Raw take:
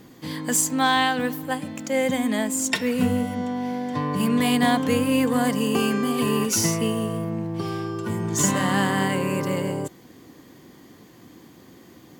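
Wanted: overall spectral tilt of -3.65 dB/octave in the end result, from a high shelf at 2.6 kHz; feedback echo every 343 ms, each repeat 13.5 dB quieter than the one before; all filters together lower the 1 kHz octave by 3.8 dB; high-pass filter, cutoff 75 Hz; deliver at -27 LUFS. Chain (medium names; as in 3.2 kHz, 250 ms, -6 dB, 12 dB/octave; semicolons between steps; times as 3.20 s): high-pass 75 Hz; peaking EQ 1 kHz -6 dB; treble shelf 2.6 kHz +6 dB; feedback delay 343 ms, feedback 21%, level -13.5 dB; trim -5.5 dB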